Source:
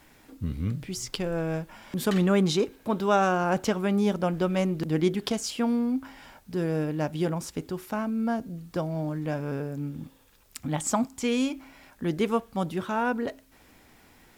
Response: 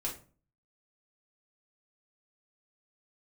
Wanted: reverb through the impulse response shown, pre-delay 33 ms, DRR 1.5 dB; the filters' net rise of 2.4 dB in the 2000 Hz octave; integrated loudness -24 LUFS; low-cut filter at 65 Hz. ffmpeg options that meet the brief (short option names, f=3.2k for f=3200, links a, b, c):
-filter_complex "[0:a]highpass=65,equalizer=f=2k:t=o:g=3.5,asplit=2[a][b];[1:a]atrim=start_sample=2205,adelay=33[c];[b][c]afir=irnorm=-1:irlink=0,volume=-3.5dB[d];[a][d]amix=inputs=2:normalize=0,volume=1.5dB"